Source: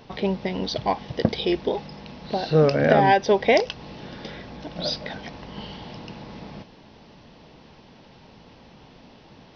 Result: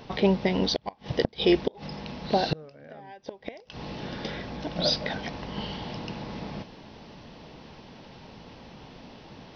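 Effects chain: inverted gate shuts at -13 dBFS, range -31 dB; trim +2.5 dB

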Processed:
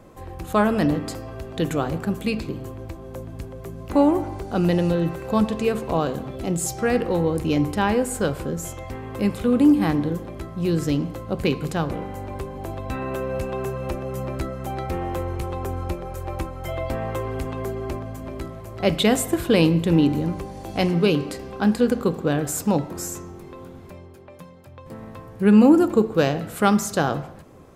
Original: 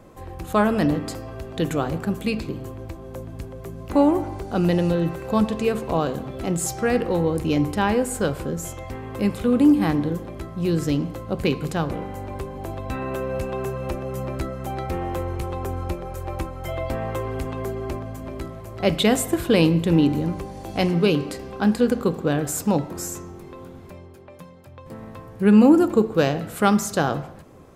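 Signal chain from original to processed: 6.36–6.79 s: peaking EQ 1.4 kHz -5 dB 1.3 oct

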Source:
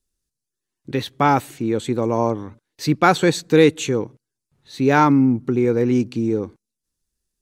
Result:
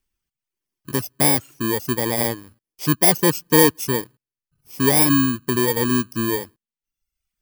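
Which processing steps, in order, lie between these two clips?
bit-reversed sample order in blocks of 32 samples; reverb removal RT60 0.82 s

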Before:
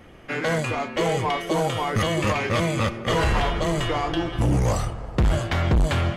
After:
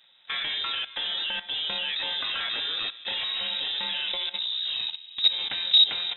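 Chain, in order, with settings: frequency inversion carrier 3.8 kHz; level held to a coarse grid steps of 15 dB

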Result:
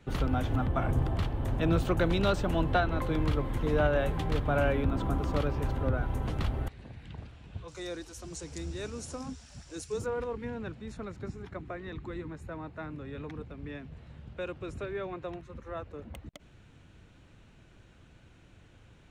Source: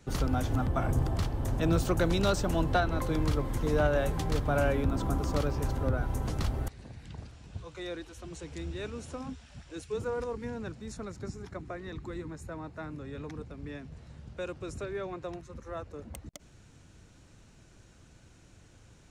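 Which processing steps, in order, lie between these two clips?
resonant high shelf 4.2 kHz -8 dB, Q 1.5, from 7.68 s +6 dB, from 10.06 s -8 dB

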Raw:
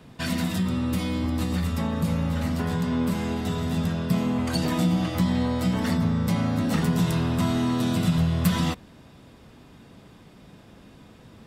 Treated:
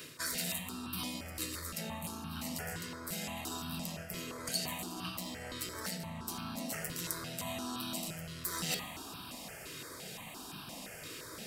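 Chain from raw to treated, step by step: single-diode clipper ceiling -22.5 dBFS; band-stop 3.5 kHz, Q 14; de-hum 137.4 Hz, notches 38; reverse; compression 12:1, threshold -39 dBFS, peak gain reduction 20.5 dB; reverse; tilt EQ +3.5 dB/octave; on a send at -7.5 dB: reverberation RT60 2.3 s, pre-delay 3 ms; on the sum: stepped phaser 5.8 Hz 210–2000 Hz; trim +8.5 dB

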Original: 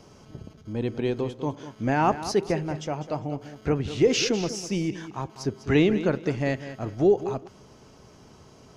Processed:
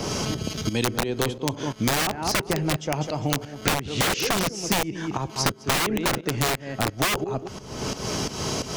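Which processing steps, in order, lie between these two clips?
tremolo saw up 2.9 Hz, depth 80%; integer overflow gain 23 dB; three bands compressed up and down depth 100%; trim +6.5 dB

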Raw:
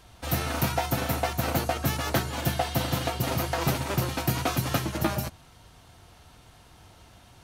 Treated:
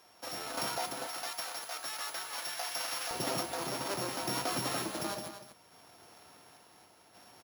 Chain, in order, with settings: sorted samples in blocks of 8 samples; high-pass 360 Hz 12 dB/octave, from 1.08 s 1 kHz, from 3.11 s 280 Hz; peak limiter -22 dBFS, peak gain reduction 11 dB; random-step tremolo; delay 241 ms -10.5 dB

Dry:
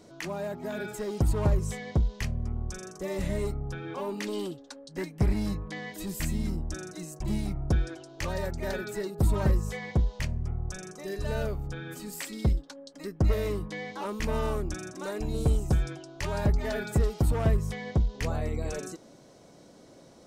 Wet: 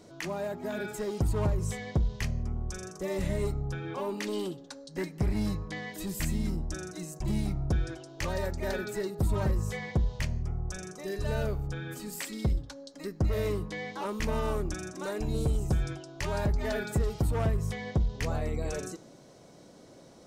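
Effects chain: peak limiter -20.5 dBFS, peak gain reduction 6 dB; on a send: reverberation, pre-delay 3 ms, DRR 19.5 dB

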